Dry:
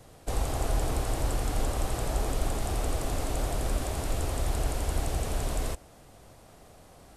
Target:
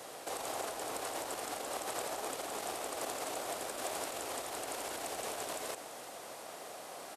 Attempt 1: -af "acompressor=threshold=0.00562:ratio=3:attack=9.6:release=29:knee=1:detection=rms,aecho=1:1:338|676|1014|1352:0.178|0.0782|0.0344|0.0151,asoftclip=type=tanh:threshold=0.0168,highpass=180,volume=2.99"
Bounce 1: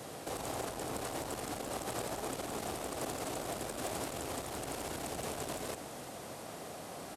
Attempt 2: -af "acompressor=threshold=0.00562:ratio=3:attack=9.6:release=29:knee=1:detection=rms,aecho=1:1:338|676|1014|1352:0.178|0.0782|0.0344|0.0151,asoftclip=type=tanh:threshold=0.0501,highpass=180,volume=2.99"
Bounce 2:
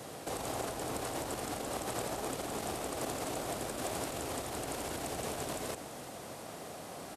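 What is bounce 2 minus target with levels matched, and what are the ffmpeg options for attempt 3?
250 Hz band +7.0 dB
-af "acompressor=threshold=0.00562:ratio=3:attack=9.6:release=29:knee=1:detection=rms,aecho=1:1:338|676|1014|1352:0.178|0.0782|0.0344|0.0151,asoftclip=type=tanh:threshold=0.0501,highpass=460,volume=2.99"

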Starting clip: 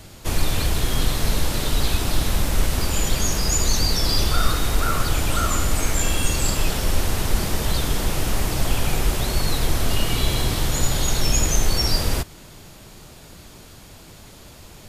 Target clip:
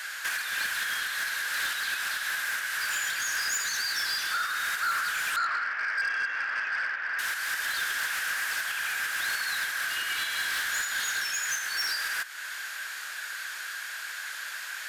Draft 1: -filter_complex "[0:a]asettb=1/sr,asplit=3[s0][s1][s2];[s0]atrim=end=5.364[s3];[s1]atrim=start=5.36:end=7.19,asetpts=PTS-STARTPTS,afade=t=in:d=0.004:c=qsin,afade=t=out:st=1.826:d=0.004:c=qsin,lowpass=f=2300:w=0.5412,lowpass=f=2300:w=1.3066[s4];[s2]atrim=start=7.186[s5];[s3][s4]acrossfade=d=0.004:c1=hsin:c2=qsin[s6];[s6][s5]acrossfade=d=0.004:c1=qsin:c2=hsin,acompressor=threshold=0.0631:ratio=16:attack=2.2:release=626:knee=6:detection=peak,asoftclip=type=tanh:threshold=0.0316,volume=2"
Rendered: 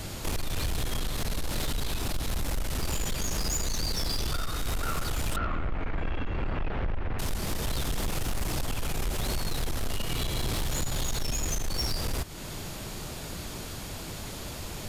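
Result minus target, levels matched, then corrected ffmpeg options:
2 kHz band -11.0 dB
-filter_complex "[0:a]asettb=1/sr,asplit=3[s0][s1][s2];[s0]atrim=end=5.364[s3];[s1]atrim=start=5.36:end=7.19,asetpts=PTS-STARTPTS,afade=t=in:d=0.004:c=qsin,afade=t=out:st=1.826:d=0.004:c=qsin,lowpass=f=2300:w=0.5412,lowpass=f=2300:w=1.3066[s4];[s2]atrim=start=7.186[s5];[s3][s4]acrossfade=d=0.004:c1=hsin:c2=qsin[s6];[s6][s5]acrossfade=d=0.004:c1=qsin:c2=hsin,acompressor=threshold=0.0631:ratio=16:attack=2.2:release=626:knee=6:detection=peak,highpass=f=1600:t=q:w=10,asoftclip=type=tanh:threshold=0.0316,volume=2"

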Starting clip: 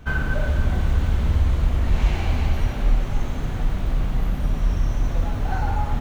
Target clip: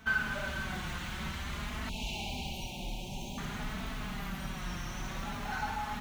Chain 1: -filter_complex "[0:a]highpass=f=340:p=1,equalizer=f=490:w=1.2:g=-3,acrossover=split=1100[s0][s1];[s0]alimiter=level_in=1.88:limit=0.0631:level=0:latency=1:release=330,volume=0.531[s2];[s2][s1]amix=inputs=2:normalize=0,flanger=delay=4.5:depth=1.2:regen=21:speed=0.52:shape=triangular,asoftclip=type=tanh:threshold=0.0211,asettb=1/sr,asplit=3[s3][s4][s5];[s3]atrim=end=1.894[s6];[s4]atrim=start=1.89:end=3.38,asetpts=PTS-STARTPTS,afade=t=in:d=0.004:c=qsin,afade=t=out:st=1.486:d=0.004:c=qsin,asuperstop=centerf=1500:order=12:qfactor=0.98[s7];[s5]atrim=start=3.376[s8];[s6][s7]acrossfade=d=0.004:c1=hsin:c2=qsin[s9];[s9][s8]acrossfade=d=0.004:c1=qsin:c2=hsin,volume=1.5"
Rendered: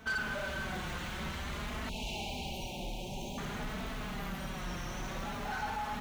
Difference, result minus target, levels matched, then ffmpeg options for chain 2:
saturation: distortion +16 dB; 500 Hz band +4.0 dB
-filter_complex "[0:a]highpass=f=340:p=1,equalizer=f=490:w=1.2:g=-10.5,acrossover=split=1100[s0][s1];[s0]alimiter=level_in=1.88:limit=0.0631:level=0:latency=1:release=330,volume=0.531[s2];[s2][s1]amix=inputs=2:normalize=0,flanger=delay=4.5:depth=1.2:regen=21:speed=0.52:shape=triangular,asoftclip=type=tanh:threshold=0.075,asettb=1/sr,asplit=3[s3][s4][s5];[s3]atrim=end=1.894[s6];[s4]atrim=start=1.89:end=3.38,asetpts=PTS-STARTPTS,afade=t=in:d=0.004:c=qsin,afade=t=out:st=1.486:d=0.004:c=qsin,asuperstop=centerf=1500:order=12:qfactor=0.98[s7];[s5]atrim=start=3.376[s8];[s6][s7]acrossfade=d=0.004:c1=hsin:c2=qsin[s9];[s9][s8]acrossfade=d=0.004:c1=qsin:c2=hsin,volume=1.5"

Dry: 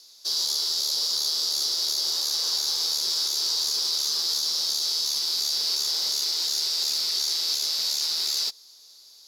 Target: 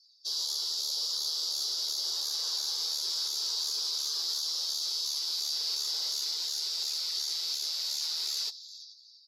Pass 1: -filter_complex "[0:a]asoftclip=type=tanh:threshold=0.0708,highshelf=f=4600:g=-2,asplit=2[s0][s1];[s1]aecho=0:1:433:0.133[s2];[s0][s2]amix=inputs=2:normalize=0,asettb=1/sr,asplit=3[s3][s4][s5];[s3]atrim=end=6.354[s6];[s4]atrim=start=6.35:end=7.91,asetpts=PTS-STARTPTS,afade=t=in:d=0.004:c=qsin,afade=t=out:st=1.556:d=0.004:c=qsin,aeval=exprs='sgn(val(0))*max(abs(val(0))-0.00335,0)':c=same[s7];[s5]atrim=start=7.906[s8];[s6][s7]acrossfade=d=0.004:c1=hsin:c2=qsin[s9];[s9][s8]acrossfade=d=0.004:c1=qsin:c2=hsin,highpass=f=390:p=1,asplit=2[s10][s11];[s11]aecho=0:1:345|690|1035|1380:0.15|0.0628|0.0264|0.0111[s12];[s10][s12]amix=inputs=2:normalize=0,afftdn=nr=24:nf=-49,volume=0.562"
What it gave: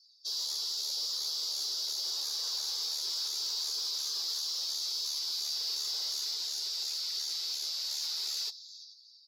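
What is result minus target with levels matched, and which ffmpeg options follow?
saturation: distortion +12 dB
-filter_complex "[0:a]asoftclip=type=tanh:threshold=0.188,highshelf=f=4600:g=-2,asplit=2[s0][s1];[s1]aecho=0:1:433:0.133[s2];[s0][s2]amix=inputs=2:normalize=0,asettb=1/sr,asplit=3[s3][s4][s5];[s3]atrim=end=6.354[s6];[s4]atrim=start=6.35:end=7.91,asetpts=PTS-STARTPTS,afade=t=in:d=0.004:c=qsin,afade=t=out:st=1.556:d=0.004:c=qsin,aeval=exprs='sgn(val(0))*max(abs(val(0))-0.00335,0)':c=same[s7];[s5]atrim=start=7.906[s8];[s6][s7]acrossfade=d=0.004:c1=hsin:c2=qsin[s9];[s9][s8]acrossfade=d=0.004:c1=qsin:c2=hsin,highpass=f=390:p=1,asplit=2[s10][s11];[s11]aecho=0:1:345|690|1035|1380:0.15|0.0628|0.0264|0.0111[s12];[s10][s12]amix=inputs=2:normalize=0,afftdn=nr=24:nf=-49,volume=0.562"

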